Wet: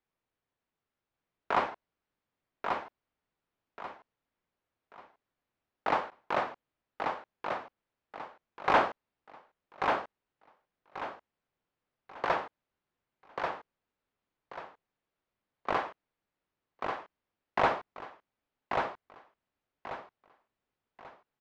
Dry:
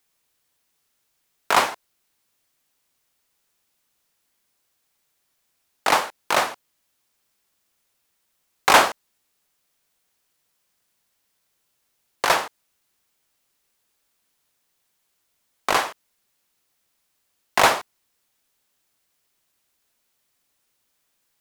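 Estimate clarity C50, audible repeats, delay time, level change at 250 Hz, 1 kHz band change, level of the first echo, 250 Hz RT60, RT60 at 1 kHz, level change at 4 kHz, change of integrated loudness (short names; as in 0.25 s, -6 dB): none, 3, 1.138 s, -5.0 dB, -8.0 dB, -4.5 dB, none, none, -18.0 dB, -13.0 dB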